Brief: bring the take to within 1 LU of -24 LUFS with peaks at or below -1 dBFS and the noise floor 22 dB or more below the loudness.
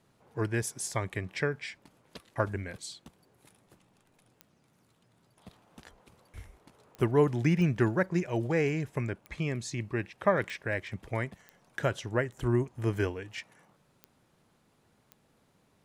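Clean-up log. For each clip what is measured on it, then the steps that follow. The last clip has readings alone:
clicks 8; loudness -31.5 LUFS; peak -11.5 dBFS; loudness target -24.0 LUFS
-> de-click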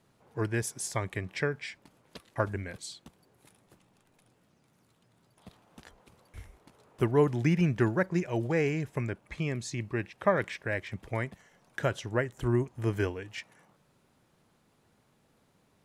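clicks 0; loudness -31.5 LUFS; peak -11.5 dBFS; loudness target -24.0 LUFS
-> gain +7.5 dB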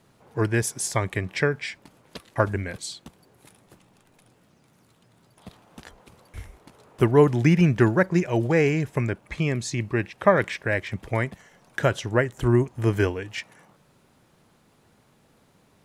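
loudness -24.0 LUFS; peak -4.0 dBFS; noise floor -61 dBFS

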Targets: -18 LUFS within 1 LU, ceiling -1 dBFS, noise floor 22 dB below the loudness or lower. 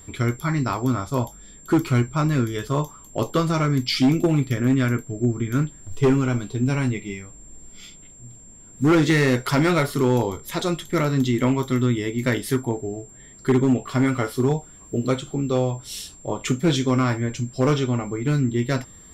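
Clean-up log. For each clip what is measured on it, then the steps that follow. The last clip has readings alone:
clipped 1.1%; flat tops at -12.5 dBFS; steady tone 7400 Hz; tone level -45 dBFS; loudness -22.5 LUFS; peak -12.5 dBFS; loudness target -18.0 LUFS
-> clip repair -12.5 dBFS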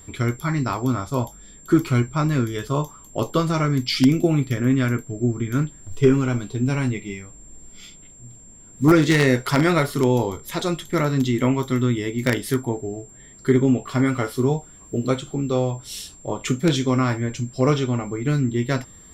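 clipped 0.0%; steady tone 7400 Hz; tone level -45 dBFS
-> notch 7400 Hz, Q 30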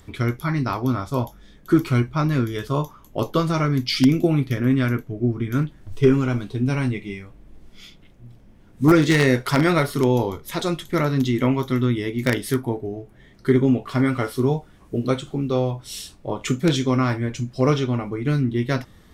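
steady tone none; loudness -22.0 LUFS; peak -3.5 dBFS; loudness target -18.0 LUFS
-> gain +4 dB; limiter -1 dBFS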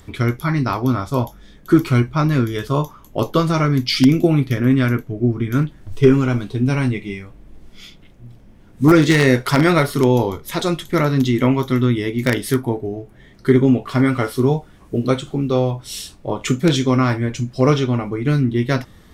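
loudness -18.0 LUFS; peak -1.0 dBFS; noise floor -46 dBFS

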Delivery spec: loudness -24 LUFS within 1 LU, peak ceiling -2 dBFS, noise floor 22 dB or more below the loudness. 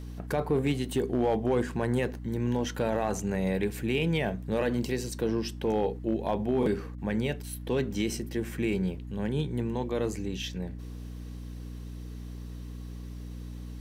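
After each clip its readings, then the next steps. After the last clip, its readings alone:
clipped 0.3%; flat tops at -18.5 dBFS; hum 60 Hz; harmonics up to 300 Hz; hum level -38 dBFS; loudness -30.0 LUFS; peak -18.5 dBFS; loudness target -24.0 LUFS
-> clip repair -18.5 dBFS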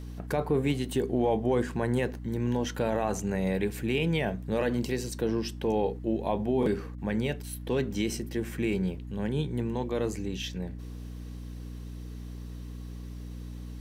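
clipped 0.0%; hum 60 Hz; harmonics up to 300 Hz; hum level -37 dBFS
-> de-hum 60 Hz, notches 5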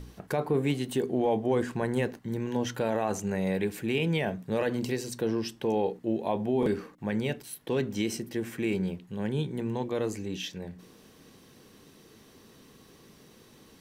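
hum none; loudness -30.5 LUFS; peak -15.5 dBFS; loudness target -24.0 LUFS
-> gain +6.5 dB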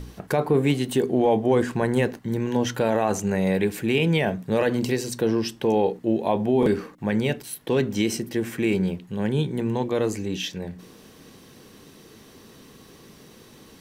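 loudness -24.0 LUFS; peak -9.0 dBFS; noise floor -50 dBFS

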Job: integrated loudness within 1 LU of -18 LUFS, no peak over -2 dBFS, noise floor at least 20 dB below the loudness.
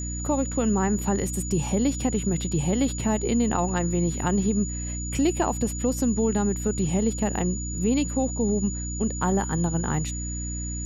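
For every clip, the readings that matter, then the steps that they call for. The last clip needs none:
hum 60 Hz; harmonics up to 300 Hz; hum level -30 dBFS; steady tone 6900 Hz; tone level -34 dBFS; loudness -25.5 LUFS; peak -10.5 dBFS; loudness target -18.0 LUFS
-> notches 60/120/180/240/300 Hz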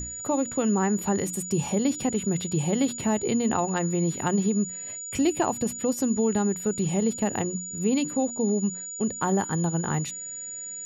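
hum none; steady tone 6900 Hz; tone level -34 dBFS
-> notch 6900 Hz, Q 30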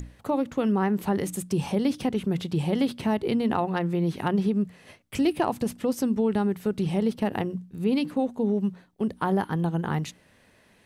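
steady tone none; loudness -27.0 LUFS; peak -13.0 dBFS; loudness target -18.0 LUFS
-> gain +9 dB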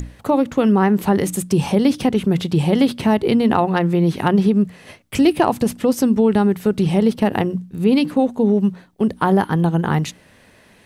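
loudness -18.0 LUFS; peak -4.0 dBFS; noise floor -51 dBFS

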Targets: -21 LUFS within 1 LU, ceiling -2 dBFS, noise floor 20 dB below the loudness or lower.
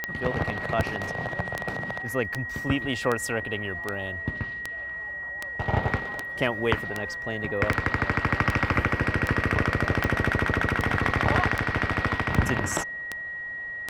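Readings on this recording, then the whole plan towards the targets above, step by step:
clicks 19; steady tone 1900 Hz; tone level -32 dBFS; loudness -27.0 LUFS; peak -6.5 dBFS; loudness target -21.0 LUFS
-> de-click; notch 1900 Hz, Q 30; gain +6 dB; limiter -2 dBFS

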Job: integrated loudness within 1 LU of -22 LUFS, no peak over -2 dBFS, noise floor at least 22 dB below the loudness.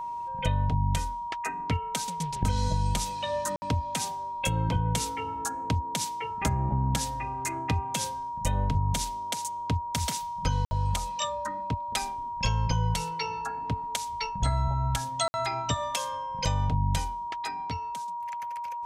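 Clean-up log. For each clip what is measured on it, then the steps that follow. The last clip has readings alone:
dropouts 3; longest dropout 60 ms; steady tone 950 Hz; tone level -32 dBFS; loudness -30.0 LUFS; peak -13.0 dBFS; loudness target -22.0 LUFS
-> interpolate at 3.56/10.65/15.28, 60 ms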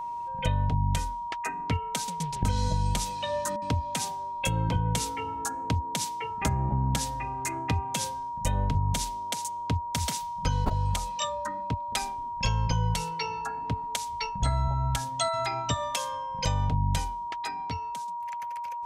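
dropouts 0; steady tone 950 Hz; tone level -32 dBFS
-> notch 950 Hz, Q 30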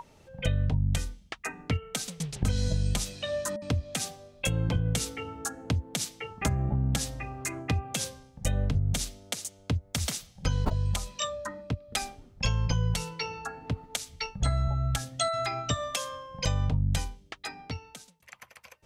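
steady tone none; loudness -31.5 LUFS; peak -14.0 dBFS; loudness target -22.0 LUFS
-> gain +9.5 dB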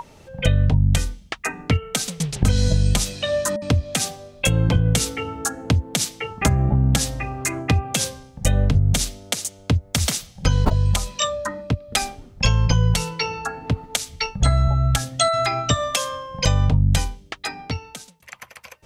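loudness -22.0 LUFS; peak -4.5 dBFS; noise floor -49 dBFS

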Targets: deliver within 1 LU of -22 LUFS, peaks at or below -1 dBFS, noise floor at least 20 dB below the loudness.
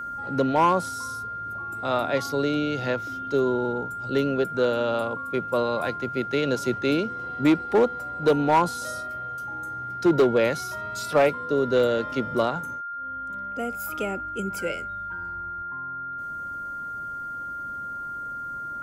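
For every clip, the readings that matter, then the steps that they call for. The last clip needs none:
clipped 0.5%; flat tops at -13.0 dBFS; steady tone 1400 Hz; tone level -31 dBFS; loudness -26.0 LUFS; peak -13.0 dBFS; loudness target -22.0 LUFS
-> clip repair -13 dBFS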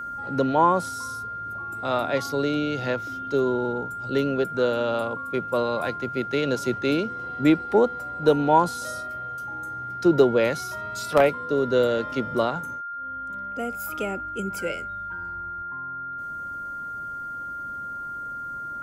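clipped 0.0%; steady tone 1400 Hz; tone level -31 dBFS
-> notch 1400 Hz, Q 30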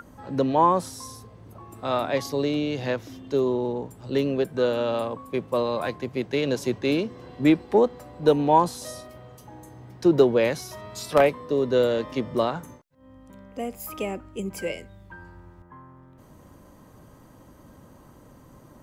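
steady tone none; loudness -24.5 LUFS; peak -4.0 dBFS; loudness target -22.0 LUFS
-> gain +2.5 dB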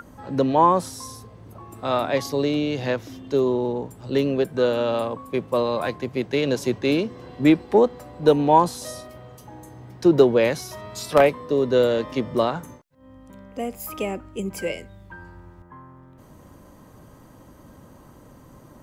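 loudness -22.0 LUFS; peak -1.5 dBFS; noise floor -49 dBFS

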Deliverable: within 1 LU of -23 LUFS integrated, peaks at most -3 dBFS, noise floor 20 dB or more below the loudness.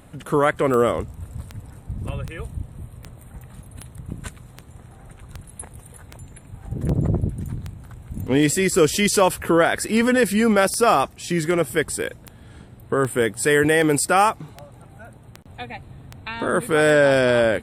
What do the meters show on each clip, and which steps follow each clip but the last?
clicks 22; loudness -19.5 LUFS; peak -4.0 dBFS; loudness target -23.0 LUFS
-> de-click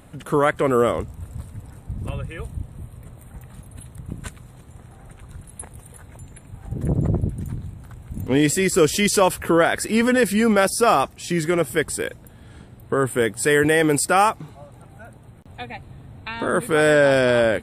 clicks 0; loudness -19.5 LUFS; peak -4.0 dBFS; loudness target -23.0 LUFS
-> gain -3.5 dB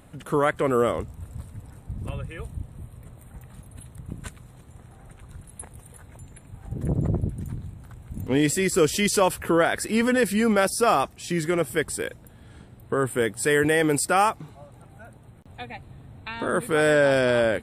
loudness -23.0 LUFS; peak -7.5 dBFS; noise floor -50 dBFS

